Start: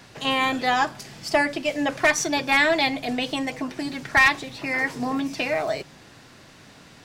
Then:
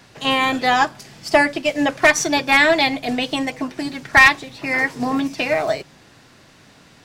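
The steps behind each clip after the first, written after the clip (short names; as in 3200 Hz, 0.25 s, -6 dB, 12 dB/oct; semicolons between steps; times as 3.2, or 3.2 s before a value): in parallel at -2 dB: limiter -16 dBFS, peak gain reduction 9 dB; on the sum: upward expander 1.5:1, over -31 dBFS; gain +4 dB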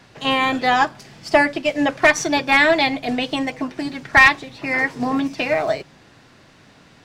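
high shelf 6600 Hz -9 dB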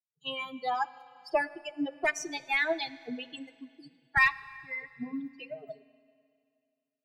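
per-bin expansion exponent 3; Schroeder reverb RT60 2.4 s, combs from 32 ms, DRR 17.5 dB; gain -9 dB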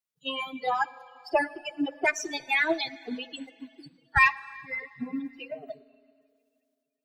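bin magnitudes rounded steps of 30 dB; gain +4 dB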